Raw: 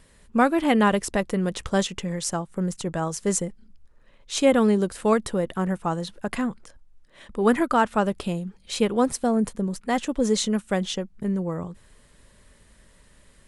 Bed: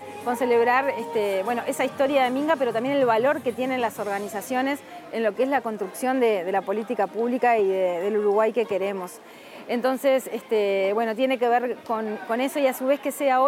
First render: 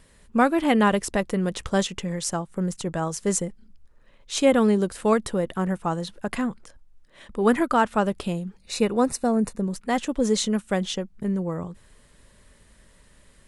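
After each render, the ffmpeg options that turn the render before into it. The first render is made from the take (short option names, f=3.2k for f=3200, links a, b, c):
-filter_complex "[0:a]asettb=1/sr,asplit=3[a][b][c];[a]atrim=end=8.604[d];[b]atrim=start=8.6:end=9.62,asetpts=PTS-STARTPTS,afade=t=in:d=0.004:c=qsin,afade=t=out:st=1.016:d=0.004:c=qsin,asuperstop=centerf=3200:order=12:qfactor=7.4[e];[c]atrim=start=9.616[f];[d][e]acrossfade=d=0.004:c1=hsin:c2=qsin[g];[g][f]acrossfade=d=0.004:c1=qsin:c2=hsin"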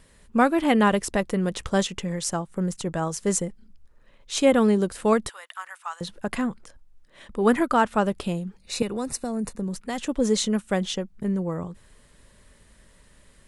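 -filter_complex "[0:a]asettb=1/sr,asplit=3[a][b][c];[a]atrim=end=5.294[d];[b]atrim=start=5.29:end=6.01,asetpts=PTS-STARTPTS,afade=t=in:d=0.004:c=qsin,afade=t=out:st=0.716:d=0.004:c=qsin,highpass=f=1.1k:w=0.5412,highpass=f=1.1k:w=1.3066[e];[c]atrim=start=6.006[f];[d][e]acrossfade=d=0.004:c1=hsin:c2=qsin[g];[g][f]acrossfade=d=0.004:c1=qsin:c2=hsin,asettb=1/sr,asplit=3[h][i][j];[h]atrim=end=8.824[k];[i]atrim=start=8.82:end=10.06,asetpts=PTS-STARTPTS,afade=t=in:d=0.004:c=qsin,afade=t=out:st=1.236:d=0.004:c=qsin,acrossover=split=140|3000[l][m][n];[m]acompressor=threshold=-27dB:ratio=4:attack=3.2:release=140:knee=2.83:detection=peak[o];[l][o][n]amix=inputs=3:normalize=0[p];[j]atrim=start=10.056[q];[k][p]acrossfade=d=0.004:c1=hsin:c2=qsin[r];[r][q]acrossfade=d=0.004:c1=qsin:c2=hsin"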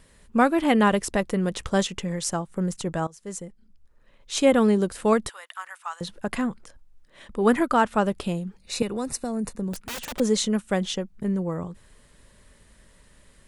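-filter_complex "[0:a]asettb=1/sr,asplit=3[a][b][c];[a]atrim=end=9.734[d];[b]atrim=start=9.73:end=10.2,asetpts=PTS-STARTPTS,afade=t=in:d=0.004:c=qsin,afade=t=out:st=0.466:d=0.004:c=qsin,aeval=exprs='(mod(26.6*val(0)+1,2)-1)/26.6':c=same[e];[c]atrim=start=10.196[f];[d][e]acrossfade=d=0.004:c1=hsin:c2=qsin[g];[g][f]acrossfade=d=0.004:c1=qsin:c2=hsin,asplit=2[h][i];[h]atrim=end=3.07,asetpts=PTS-STARTPTS,afade=t=out:st=3.066:d=0.004:c=hsin:silence=0.0944061[j];[i]atrim=start=3.07,asetpts=PTS-STARTPTS,afade=t=in:d=1.31:silence=0.0944061[k];[j][k]concat=n=2:v=0:a=1"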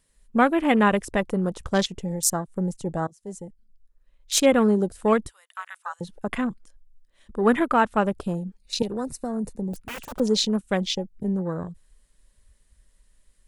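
-af "afwtdn=0.0178,highshelf=f=4.1k:g=11"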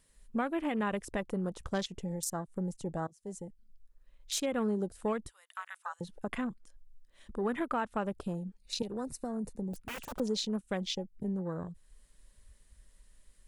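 -af "alimiter=limit=-12.5dB:level=0:latency=1:release=141,acompressor=threshold=-48dB:ratio=1.5"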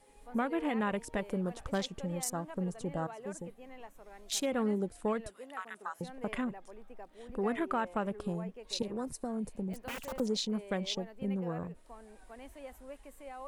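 -filter_complex "[1:a]volume=-26dB[a];[0:a][a]amix=inputs=2:normalize=0"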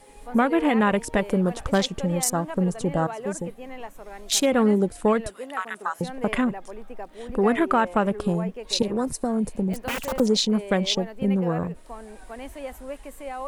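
-af "volume=12dB"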